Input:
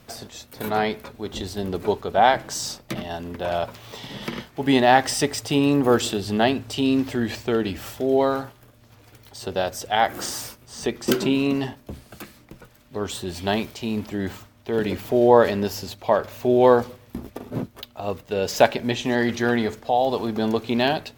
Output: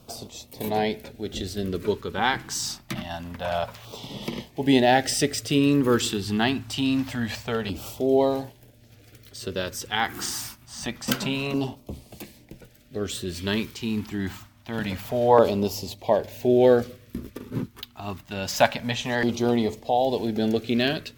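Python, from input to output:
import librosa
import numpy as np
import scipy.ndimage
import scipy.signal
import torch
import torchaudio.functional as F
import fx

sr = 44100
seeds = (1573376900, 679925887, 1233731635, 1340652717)

y = fx.filter_lfo_notch(x, sr, shape='saw_down', hz=0.26, low_hz=300.0, high_hz=1900.0, q=0.96)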